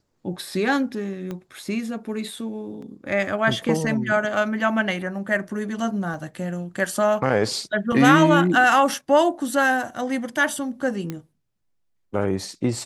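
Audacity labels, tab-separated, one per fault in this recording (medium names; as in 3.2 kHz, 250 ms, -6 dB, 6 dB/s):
1.310000	1.310000	pop -19 dBFS
2.820000	2.820000	dropout 4.2 ms
6.140000	6.140000	dropout 2.2 ms
7.920000	7.920000	dropout 4 ms
11.100000	11.100000	pop -16 dBFS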